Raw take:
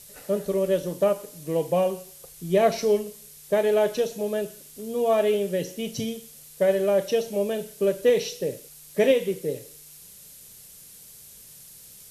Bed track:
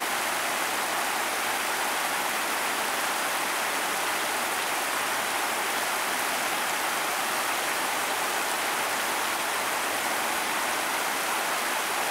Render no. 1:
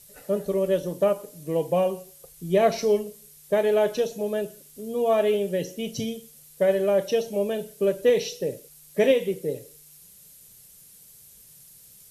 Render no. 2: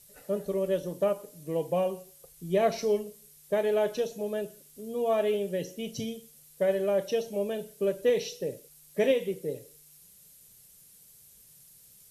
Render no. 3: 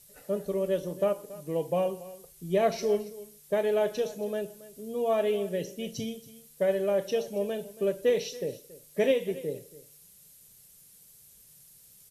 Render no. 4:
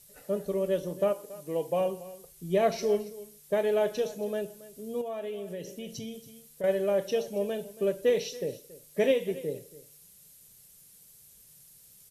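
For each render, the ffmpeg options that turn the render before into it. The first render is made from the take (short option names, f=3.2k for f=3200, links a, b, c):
-af "afftdn=nr=6:nf=-48"
-af "volume=-5dB"
-af "aecho=1:1:278:0.126"
-filter_complex "[0:a]asettb=1/sr,asplit=3[a][b][c];[a]atrim=end=1.114[d];[b]atrim=start=1.11:end=1.81,asetpts=PTS-STARTPTS,afade=t=in:d=0.004:c=qsin,afade=t=out:st=0.696:d=0.004:c=qsin,bass=f=250:g=-6,treble=f=4k:g=1[e];[c]atrim=start=1.806[f];[d][e]acrossfade=d=0.004:c1=hsin:c2=qsin[g];[g][f]acrossfade=d=0.004:c1=qsin:c2=hsin,asettb=1/sr,asplit=3[h][i][j];[h]atrim=end=5.014[k];[i]atrim=start=5.01:end=6.64,asetpts=PTS-STARTPTS,afade=t=in:d=0.004:c=qsin,afade=t=out:st=1.626:d=0.004:c=qsin,acompressor=threshold=-36dB:ratio=3:attack=3.2:release=140:knee=1:detection=peak[l];[j]atrim=start=6.636[m];[k][l]acrossfade=d=0.004:c1=hsin:c2=qsin[n];[n][m]acrossfade=d=0.004:c1=qsin:c2=hsin"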